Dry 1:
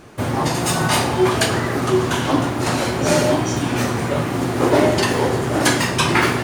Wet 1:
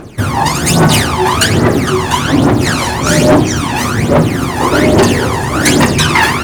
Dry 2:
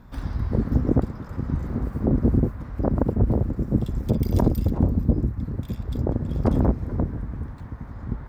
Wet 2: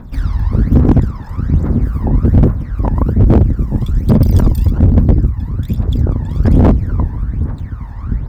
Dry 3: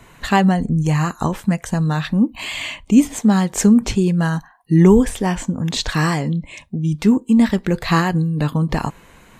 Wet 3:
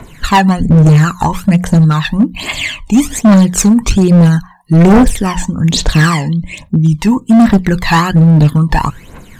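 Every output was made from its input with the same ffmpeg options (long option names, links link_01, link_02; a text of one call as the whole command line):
ffmpeg -i in.wav -af "bandreject=frequency=60:width_type=h:width=6,bandreject=frequency=120:width_type=h:width=6,bandreject=frequency=180:width_type=h:width=6,aphaser=in_gain=1:out_gain=1:delay=1.2:decay=0.72:speed=1.2:type=triangular,asoftclip=type=hard:threshold=-8.5dB,volume=5.5dB" out.wav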